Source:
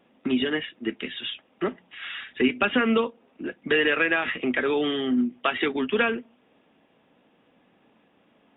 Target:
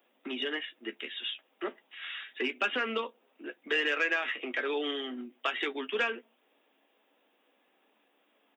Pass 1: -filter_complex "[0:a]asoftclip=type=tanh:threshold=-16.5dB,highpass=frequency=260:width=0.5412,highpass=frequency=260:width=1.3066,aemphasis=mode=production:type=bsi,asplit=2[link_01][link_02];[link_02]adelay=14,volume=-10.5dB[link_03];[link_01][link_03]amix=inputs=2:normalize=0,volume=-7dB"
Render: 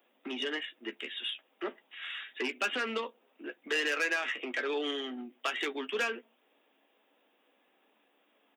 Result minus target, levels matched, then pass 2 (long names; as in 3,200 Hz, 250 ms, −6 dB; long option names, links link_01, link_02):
soft clipping: distortion +13 dB
-filter_complex "[0:a]asoftclip=type=tanh:threshold=-8dB,highpass=frequency=260:width=0.5412,highpass=frequency=260:width=1.3066,aemphasis=mode=production:type=bsi,asplit=2[link_01][link_02];[link_02]adelay=14,volume=-10.5dB[link_03];[link_01][link_03]amix=inputs=2:normalize=0,volume=-7dB"